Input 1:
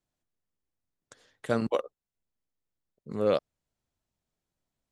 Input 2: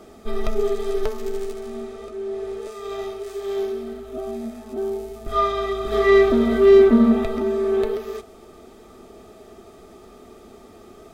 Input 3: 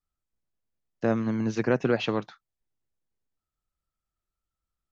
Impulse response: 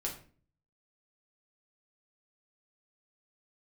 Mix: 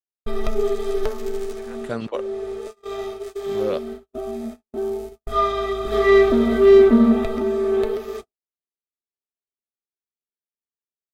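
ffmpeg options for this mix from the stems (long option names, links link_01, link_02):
-filter_complex "[0:a]acontrast=32,adelay=400,volume=-5.5dB[link_01];[1:a]agate=range=-33dB:threshold=-33dB:ratio=16:detection=peak,volume=0.5dB[link_02];[2:a]highpass=750,volume=-14dB[link_03];[link_01][link_02][link_03]amix=inputs=3:normalize=0,agate=range=-33dB:threshold=-32dB:ratio=3:detection=peak"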